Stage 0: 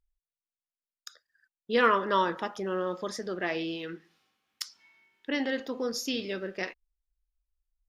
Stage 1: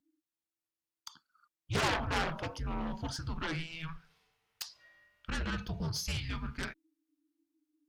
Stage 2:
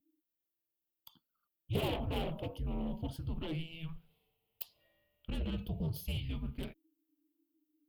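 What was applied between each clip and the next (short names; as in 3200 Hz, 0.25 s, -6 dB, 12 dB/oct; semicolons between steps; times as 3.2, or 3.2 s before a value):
frequency shift -330 Hz; added harmonics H 7 -11 dB, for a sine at -10 dBFS; soft clip -23 dBFS, distortion -6 dB
EQ curve 590 Hz 0 dB, 1600 Hz -22 dB, 3000 Hz -2 dB, 5900 Hz -24 dB, 14000 Hz +8 dB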